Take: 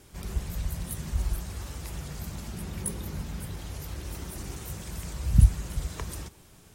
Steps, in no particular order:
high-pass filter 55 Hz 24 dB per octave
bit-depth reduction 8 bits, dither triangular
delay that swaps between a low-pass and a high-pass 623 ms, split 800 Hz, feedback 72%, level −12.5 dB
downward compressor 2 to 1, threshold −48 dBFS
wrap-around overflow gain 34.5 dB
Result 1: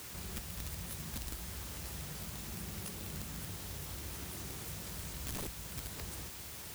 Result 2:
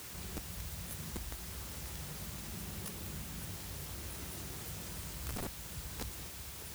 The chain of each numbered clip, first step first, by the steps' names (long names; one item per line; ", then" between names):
high-pass filter, then downward compressor, then bit-depth reduction, then wrap-around overflow, then delay that swaps between a low-pass and a high-pass
delay that swaps between a low-pass and a high-pass, then downward compressor, then high-pass filter, then wrap-around overflow, then bit-depth reduction